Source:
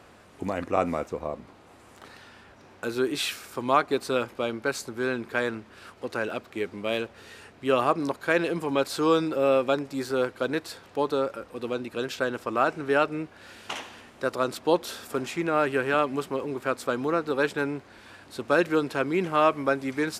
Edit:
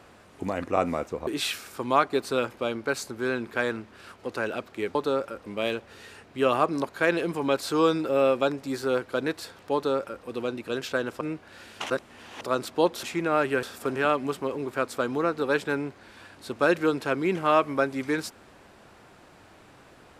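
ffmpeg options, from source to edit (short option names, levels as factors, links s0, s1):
-filter_complex "[0:a]asplit=10[s0][s1][s2][s3][s4][s5][s6][s7][s8][s9];[s0]atrim=end=1.272[s10];[s1]atrim=start=3.048:end=6.732[s11];[s2]atrim=start=11.008:end=11.522[s12];[s3]atrim=start=6.728:end=12.482[s13];[s4]atrim=start=13.098:end=13.792[s14];[s5]atrim=start=13.788:end=14.302,asetpts=PTS-STARTPTS,areverse[s15];[s6]atrim=start=14.298:end=14.922[s16];[s7]atrim=start=15.248:end=15.852[s17];[s8]atrim=start=14.918:end=15.252[s18];[s9]atrim=start=15.848[s19];[s10][s11]acrossfade=d=0.004:c1=hsin:c2=hsin[s20];[s20][s12]acrossfade=d=0.004:c1=hsin:c2=hsin[s21];[s21][s13]acrossfade=d=0.004:c1=hsin:c2=hsin[s22];[s22][s14]acrossfade=d=0.004:c1=hsin:c2=hsin[s23];[s23][s15]acrossfade=d=0.004:c1=hsin:c2=hsin[s24];[s24][s16]acrossfade=d=0.004:c1=hsin:c2=hsin[s25];[s25][s17]acrossfade=d=0.004:c1=hsin:c2=hsin[s26];[s26][s18]acrossfade=d=0.004:c1=hsin:c2=hsin[s27];[s27][s19]acrossfade=d=0.004:c1=hsin:c2=hsin"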